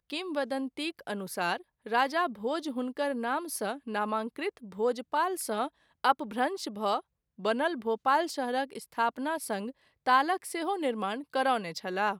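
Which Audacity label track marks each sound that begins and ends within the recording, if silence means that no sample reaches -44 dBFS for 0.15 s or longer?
1.860000	5.680000	sound
6.040000	7.000000	sound
7.390000	9.710000	sound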